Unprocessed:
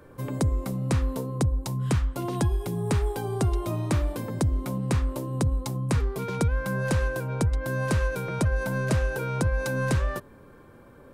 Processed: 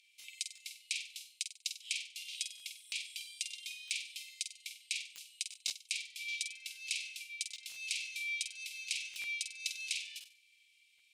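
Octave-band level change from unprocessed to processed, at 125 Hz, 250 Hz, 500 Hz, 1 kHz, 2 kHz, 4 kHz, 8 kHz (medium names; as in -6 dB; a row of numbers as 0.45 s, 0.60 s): under -40 dB, under -40 dB, under -40 dB, under -40 dB, -6.5 dB, +5.0 dB, 0.0 dB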